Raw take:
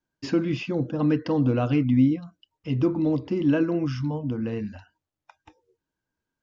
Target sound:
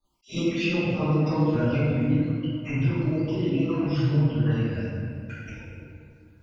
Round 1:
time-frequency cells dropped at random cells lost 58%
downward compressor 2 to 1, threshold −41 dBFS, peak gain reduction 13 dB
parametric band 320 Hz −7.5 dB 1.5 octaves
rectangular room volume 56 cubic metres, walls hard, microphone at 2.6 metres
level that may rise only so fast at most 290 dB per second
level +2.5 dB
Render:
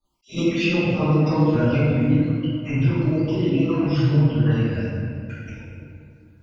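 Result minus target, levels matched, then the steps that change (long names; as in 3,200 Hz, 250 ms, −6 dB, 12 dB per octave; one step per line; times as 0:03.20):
downward compressor: peak gain reduction −4.5 dB
change: downward compressor 2 to 1, threshold −50 dBFS, peak gain reduction 17.5 dB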